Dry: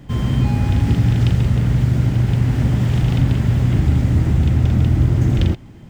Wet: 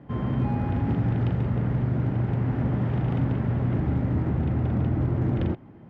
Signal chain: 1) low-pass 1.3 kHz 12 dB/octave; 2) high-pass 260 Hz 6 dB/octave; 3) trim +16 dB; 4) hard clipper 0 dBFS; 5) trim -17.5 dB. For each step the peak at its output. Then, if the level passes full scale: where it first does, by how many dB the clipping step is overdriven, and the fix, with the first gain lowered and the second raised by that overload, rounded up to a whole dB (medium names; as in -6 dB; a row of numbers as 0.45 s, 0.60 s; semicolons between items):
-4.5 dBFS, -11.5 dBFS, +4.5 dBFS, 0.0 dBFS, -17.5 dBFS; step 3, 4.5 dB; step 3 +11 dB, step 5 -12.5 dB